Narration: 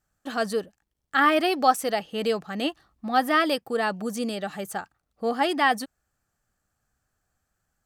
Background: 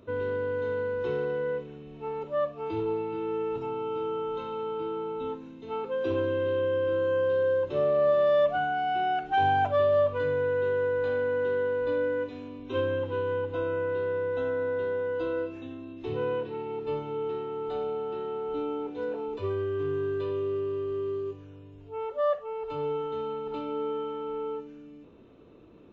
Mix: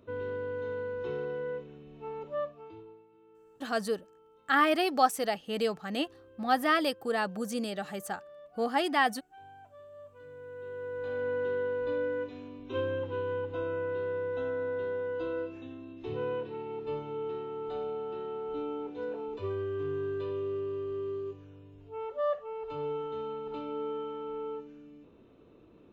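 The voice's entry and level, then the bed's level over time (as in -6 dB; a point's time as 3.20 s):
3.35 s, -4.5 dB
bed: 2.40 s -5.5 dB
3.08 s -28.5 dB
9.89 s -28.5 dB
11.28 s -4 dB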